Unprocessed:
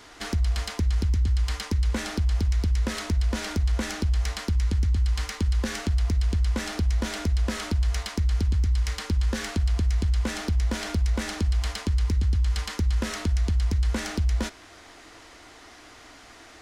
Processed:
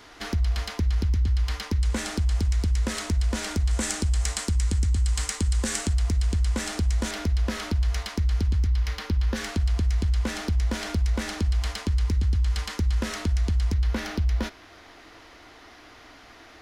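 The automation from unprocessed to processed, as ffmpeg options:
-af "asetnsamples=n=441:p=0,asendcmd='1.82 equalizer g 6;3.71 equalizer g 15;5.93 equalizer g 7.5;7.11 equalizer g -4;8.67 equalizer g -13;9.36 equalizer g -1.5;13.74 equalizer g -12',equalizer=f=8.1k:t=o:w=0.65:g=-6"

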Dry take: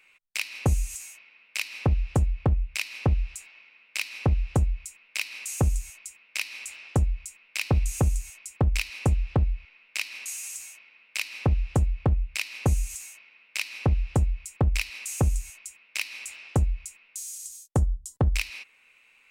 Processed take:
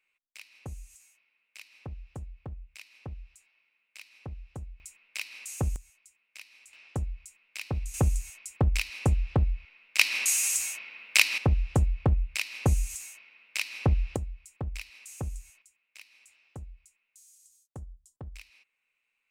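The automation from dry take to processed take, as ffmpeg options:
-af "asetnsamples=n=441:p=0,asendcmd='4.8 volume volume -6dB;5.76 volume volume -17dB;6.73 volume volume -9dB;7.94 volume volume -1.5dB;9.99 volume volume 10dB;11.38 volume volume -1dB;14.16 volume volume -12dB;15.62 volume volume -20dB',volume=-18dB"

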